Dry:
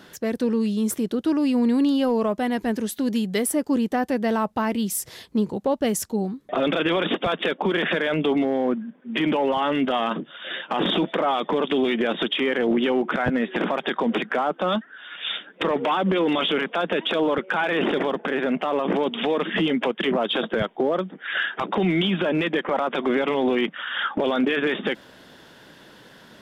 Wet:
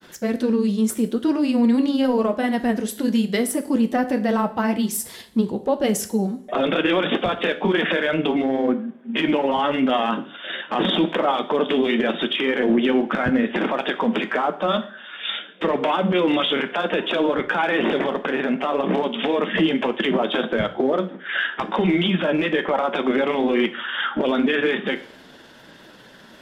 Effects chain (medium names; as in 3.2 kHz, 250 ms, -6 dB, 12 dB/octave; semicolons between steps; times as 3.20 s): granulator, spray 15 ms, pitch spread up and down by 0 st; two-slope reverb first 0.49 s, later 1.9 s, from -25 dB, DRR 7.5 dB; trim +2.5 dB